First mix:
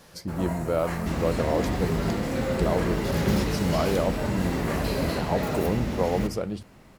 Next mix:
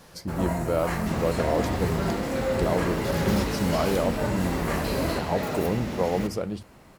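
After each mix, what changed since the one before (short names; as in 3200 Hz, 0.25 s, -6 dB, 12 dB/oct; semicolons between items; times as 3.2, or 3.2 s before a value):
first sound +3.5 dB; second sound: add low shelf 150 Hz -8.5 dB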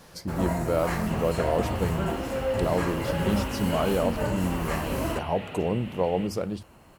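second sound: add ladder low-pass 3100 Hz, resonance 75%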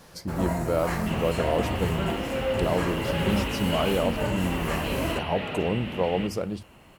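second sound +7.0 dB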